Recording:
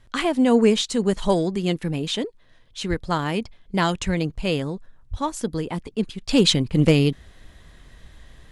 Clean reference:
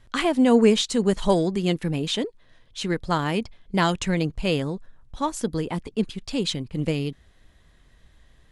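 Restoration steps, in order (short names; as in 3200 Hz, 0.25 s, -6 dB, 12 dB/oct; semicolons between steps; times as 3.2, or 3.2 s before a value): clip repair -6.5 dBFS; 2.89–3.01 HPF 140 Hz 24 dB/oct; 4.05–4.17 HPF 140 Hz 24 dB/oct; 5.1–5.22 HPF 140 Hz 24 dB/oct; gain 0 dB, from 6.29 s -9 dB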